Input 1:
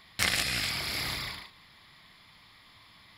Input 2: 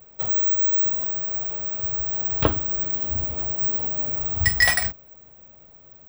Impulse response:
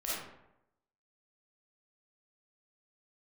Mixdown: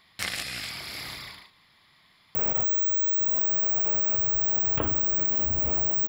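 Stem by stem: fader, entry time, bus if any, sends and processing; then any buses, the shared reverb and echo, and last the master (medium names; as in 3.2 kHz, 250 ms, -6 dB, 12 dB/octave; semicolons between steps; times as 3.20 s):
-4.0 dB, 0.00 s, no send, none
-10.5 dB, 2.35 s, no send, high-order bell 5 kHz -13.5 dB 1.1 oct; level flattener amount 100%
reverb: none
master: bass shelf 95 Hz -6 dB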